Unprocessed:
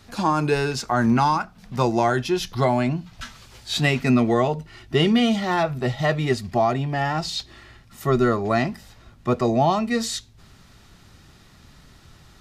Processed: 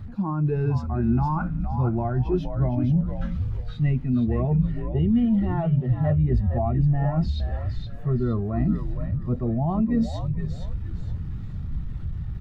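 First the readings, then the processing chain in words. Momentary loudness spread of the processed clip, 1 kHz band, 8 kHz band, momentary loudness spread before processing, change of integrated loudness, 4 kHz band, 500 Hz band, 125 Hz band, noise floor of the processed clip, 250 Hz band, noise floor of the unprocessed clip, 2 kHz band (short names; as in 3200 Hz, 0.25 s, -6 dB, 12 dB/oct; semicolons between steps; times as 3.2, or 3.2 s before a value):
11 LU, -10.5 dB, under -25 dB, 12 LU, -3.0 dB, under -15 dB, -8.0 dB, +4.5 dB, -33 dBFS, -1.0 dB, -51 dBFS, -16.5 dB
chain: zero-crossing step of -33.5 dBFS; tone controls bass +11 dB, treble -8 dB; reverse; compressor 6:1, threshold -21 dBFS, peak gain reduction 13.5 dB; reverse; bell 6800 Hz -3.5 dB 2.9 oct; on a send: frequency-shifting echo 0.466 s, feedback 44%, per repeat -71 Hz, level -4.5 dB; on the sum: spectral expander 1.5:1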